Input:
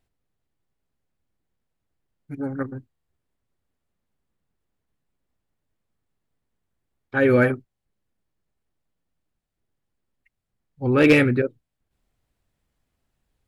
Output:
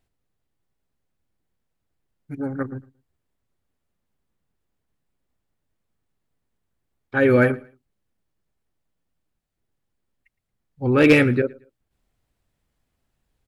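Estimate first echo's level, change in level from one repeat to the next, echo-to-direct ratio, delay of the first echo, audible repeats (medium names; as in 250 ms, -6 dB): -23.0 dB, -11.5 dB, -22.5 dB, 113 ms, 2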